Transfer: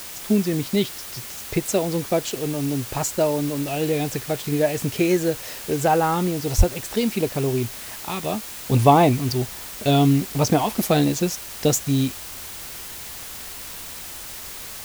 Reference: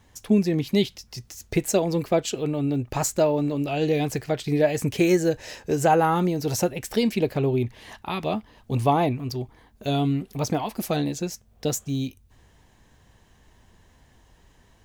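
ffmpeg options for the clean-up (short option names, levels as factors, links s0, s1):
-filter_complex "[0:a]asplit=3[s0][s1][s2];[s0]afade=t=out:st=6.57:d=0.02[s3];[s1]highpass=f=140:w=0.5412,highpass=f=140:w=1.3066,afade=t=in:st=6.57:d=0.02,afade=t=out:st=6.69:d=0.02[s4];[s2]afade=t=in:st=6.69:d=0.02[s5];[s3][s4][s5]amix=inputs=3:normalize=0,afwtdn=0.016,asetnsamples=n=441:p=0,asendcmd='8.67 volume volume -6.5dB',volume=1"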